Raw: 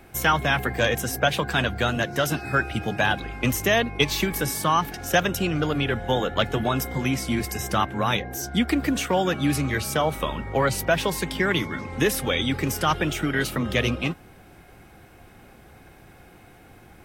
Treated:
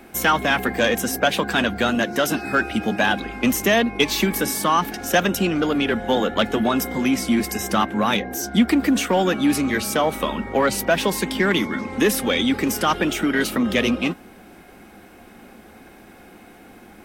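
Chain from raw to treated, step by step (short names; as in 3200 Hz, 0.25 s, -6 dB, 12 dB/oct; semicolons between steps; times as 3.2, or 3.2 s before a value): resonant low shelf 170 Hz -6.5 dB, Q 3; in parallel at -4 dB: soft clip -21.5 dBFS, distortion -9 dB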